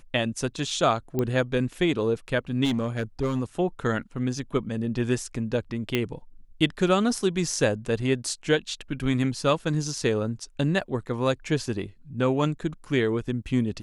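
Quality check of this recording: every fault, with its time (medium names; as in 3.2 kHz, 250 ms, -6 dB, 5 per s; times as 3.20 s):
1.19 s: pop -14 dBFS
2.64–3.40 s: clipped -20.5 dBFS
5.95 s: pop -11 dBFS
10.81–10.82 s: dropout 5.2 ms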